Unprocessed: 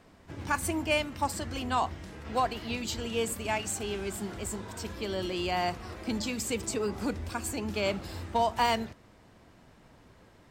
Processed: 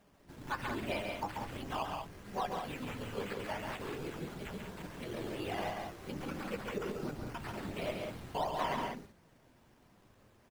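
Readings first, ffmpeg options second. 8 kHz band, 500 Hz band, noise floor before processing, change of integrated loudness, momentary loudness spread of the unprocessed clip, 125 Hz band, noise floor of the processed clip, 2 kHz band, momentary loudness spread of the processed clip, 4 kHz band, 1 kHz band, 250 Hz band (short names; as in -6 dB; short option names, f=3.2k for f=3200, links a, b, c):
-18.0 dB, -7.0 dB, -58 dBFS, -8.0 dB, 9 LU, -5.5 dB, -65 dBFS, -7.5 dB, 7 LU, -10.0 dB, -7.5 dB, -7.5 dB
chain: -filter_complex "[0:a]afftfilt=real='hypot(re,im)*cos(2*PI*random(0))':imag='hypot(re,im)*sin(2*PI*random(1))':win_size=512:overlap=0.75,flanger=delay=4.9:depth=5.1:regen=61:speed=0.45:shape=sinusoidal,acrusher=samples=9:mix=1:aa=0.000001:lfo=1:lforange=5.4:lforate=2.9,acrossover=split=3500[a][b];[b]acompressor=threshold=-56dB:ratio=4:attack=1:release=60[c];[a][c]amix=inputs=2:normalize=0,aecho=1:1:137|189.5:0.562|0.447,volume=1.5dB"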